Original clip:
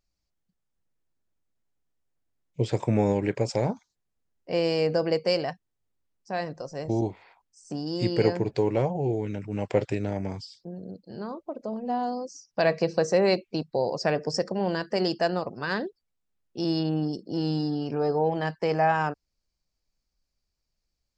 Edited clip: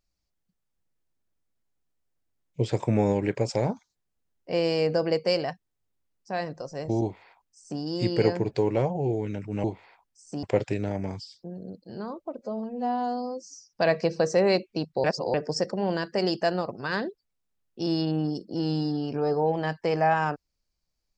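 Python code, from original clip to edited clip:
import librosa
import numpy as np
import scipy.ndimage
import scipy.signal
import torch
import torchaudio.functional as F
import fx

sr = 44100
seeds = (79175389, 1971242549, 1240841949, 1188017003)

y = fx.edit(x, sr, fx.duplicate(start_s=7.02, length_s=0.79, to_s=9.64),
    fx.stretch_span(start_s=11.6, length_s=0.86, factor=1.5),
    fx.reverse_span(start_s=13.82, length_s=0.3), tone=tone)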